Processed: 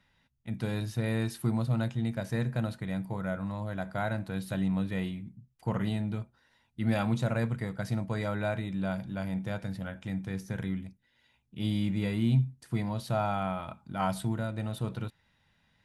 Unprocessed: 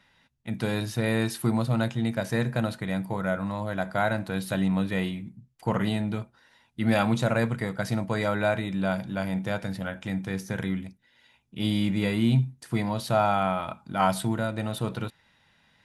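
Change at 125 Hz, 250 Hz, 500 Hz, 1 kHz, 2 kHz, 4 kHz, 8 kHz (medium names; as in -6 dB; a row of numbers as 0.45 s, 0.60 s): -2.0 dB, -4.5 dB, -7.0 dB, -7.5 dB, -8.0 dB, -8.0 dB, -8.0 dB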